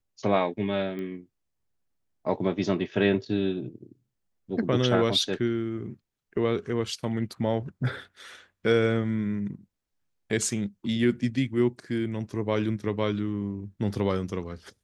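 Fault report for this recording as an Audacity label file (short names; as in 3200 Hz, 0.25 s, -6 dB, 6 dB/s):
0.990000	0.990000	pop -26 dBFS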